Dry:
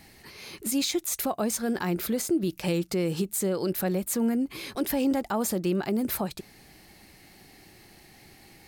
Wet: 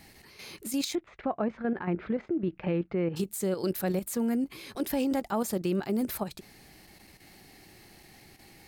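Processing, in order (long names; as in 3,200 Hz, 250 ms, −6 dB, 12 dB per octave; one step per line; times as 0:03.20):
0:00.95–0:03.16: low-pass filter 2,300 Hz 24 dB per octave
output level in coarse steps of 9 dB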